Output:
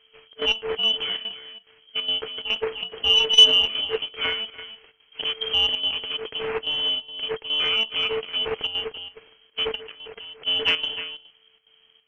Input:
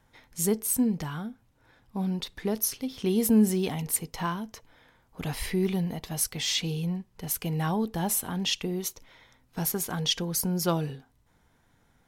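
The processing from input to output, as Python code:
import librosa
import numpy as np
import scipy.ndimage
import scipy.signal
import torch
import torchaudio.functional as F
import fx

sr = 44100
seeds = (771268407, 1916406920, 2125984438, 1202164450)

y = np.r_[np.sort(x[:len(x) // 16 * 16].reshape(-1, 16), axis=1).ravel(), x[len(x) // 16 * 16:]]
y = fx.freq_invert(y, sr, carrier_hz=3200)
y = fx.peak_eq(y, sr, hz=1700.0, db=-9.0, octaves=0.26, at=(7.65, 8.31))
y = y + 10.0 ** (-12.0 / 20.0) * np.pad(y, (int(303 * sr / 1000.0), 0))[:len(y)]
y = fx.level_steps(y, sr, step_db=22, at=(9.74, 10.46), fade=0.02)
y = fx.chopper(y, sr, hz=2.4, depth_pct=65, duty_pct=80)
y = fx.comb(y, sr, ms=6.7, depth=0.75, at=(3.09, 3.61))
y = fx.transformer_sat(y, sr, knee_hz=1200.0)
y = y * 10.0 ** (5.0 / 20.0)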